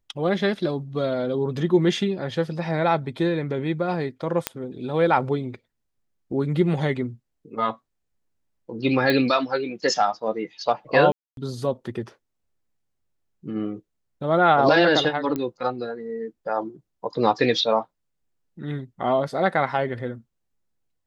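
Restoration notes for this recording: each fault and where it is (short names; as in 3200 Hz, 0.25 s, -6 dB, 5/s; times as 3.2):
4.47 pop -5 dBFS
9.1 pop -10 dBFS
11.12–11.37 gap 0.252 s
15.36 pop -15 dBFS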